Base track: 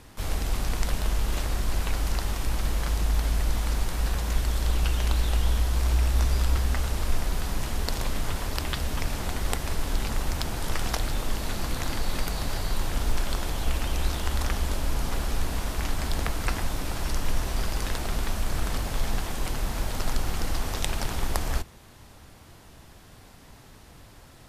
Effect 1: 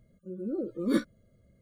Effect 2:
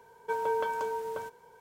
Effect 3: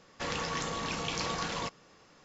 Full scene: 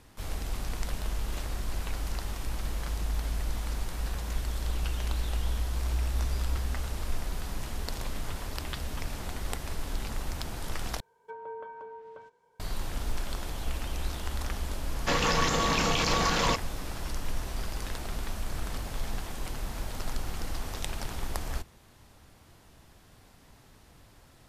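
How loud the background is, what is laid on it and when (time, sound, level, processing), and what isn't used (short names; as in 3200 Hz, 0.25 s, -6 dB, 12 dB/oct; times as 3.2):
base track -6.5 dB
11 replace with 2 -11 dB + treble ducked by the level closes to 1700 Hz, closed at -28.5 dBFS
14.87 add 3 -15 dB + maximiser +24 dB
not used: 1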